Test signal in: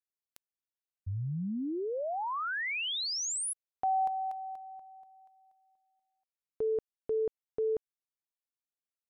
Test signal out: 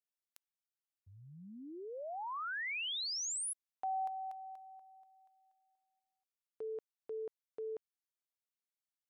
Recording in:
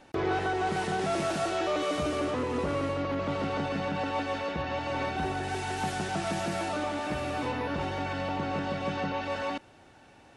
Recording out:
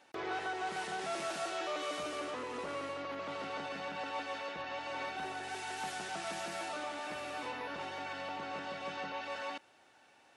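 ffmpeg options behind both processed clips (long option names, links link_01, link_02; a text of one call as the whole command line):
ffmpeg -i in.wav -af "highpass=frequency=840:poles=1,volume=-4.5dB" out.wav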